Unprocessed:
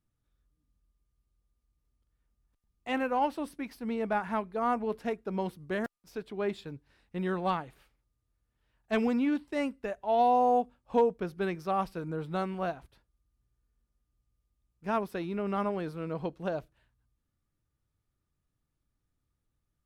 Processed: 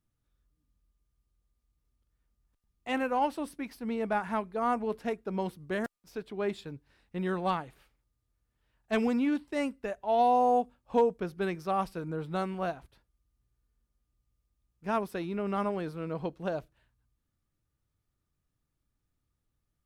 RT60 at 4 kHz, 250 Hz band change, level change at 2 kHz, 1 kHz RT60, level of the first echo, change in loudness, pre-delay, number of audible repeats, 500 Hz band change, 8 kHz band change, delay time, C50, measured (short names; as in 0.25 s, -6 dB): none, 0.0 dB, 0.0 dB, none, none, 0.0 dB, none, none, 0.0 dB, n/a, none, none